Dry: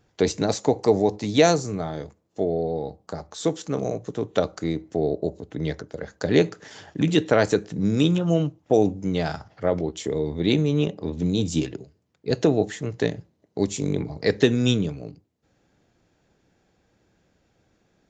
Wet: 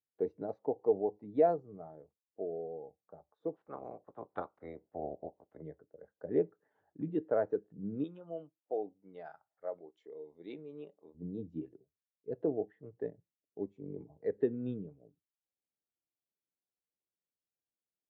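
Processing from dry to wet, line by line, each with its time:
0:03.53–0:05.61: ceiling on every frequency bin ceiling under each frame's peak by 20 dB
0:08.04–0:11.15: spectral tilt +4 dB per octave
whole clip: low-pass filter 1,200 Hz 12 dB per octave; low-shelf EQ 310 Hz −11 dB; every bin expanded away from the loudest bin 1.5 to 1; level −7 dB

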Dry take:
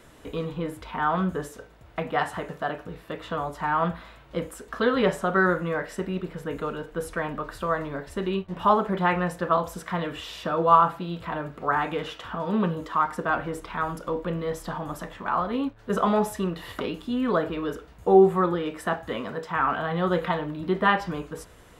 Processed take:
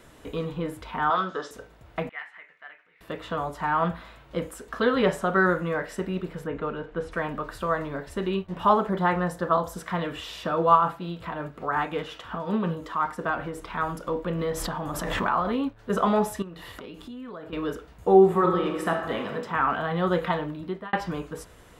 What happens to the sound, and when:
0:01.10–0:01.51: loudspeaker in its box 360–6,100 Hz, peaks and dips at 1,300 Hz +10 dB, 2,400 Hz −4 dB, 3,600 Hz +10 dB, 5,200 Hz +10 dB
0:02.09–0:03.01: resonant band-pass 2,100 Hz, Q 6
0:06.46–0:07.11: low-pass filter 2,400 Hz → 3,900 Hz
0:08.89–0:09.77: parametric band 2,500 Hz −9 dB 0.48 octaves
0:10.71–0:13.63: amplitude tremolo 5.5 Hz, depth 39%
0:14.35–0:15.67: background raised ahead of every attack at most 24 dB per second
0:16.42–0:17.53: downward compressor 5 to 1, threshold −38 dBFS
0:18.23–0:19.32: thrown reverb, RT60 1.2 s, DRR 3.5 dB
0:20.45–0:20.93: fade out

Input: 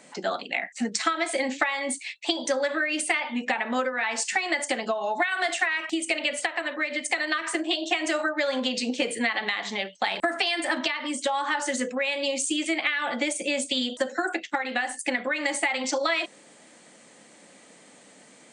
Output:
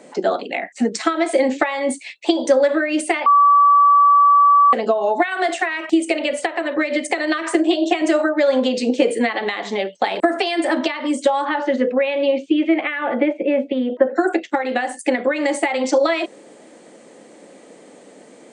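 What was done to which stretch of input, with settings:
0:03.26–0:04.73: beep over 1,150 Hz −13 dBFS
0:06.76–0:08.02: multiband upward and downward compressor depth 70%
0:11.44–0:14.15: low-pass filter 4,200 Hz → 2,000 Hz 24 dB per octave
whole clip: parametric band 410 Hz +14.5 dB 2 octaves

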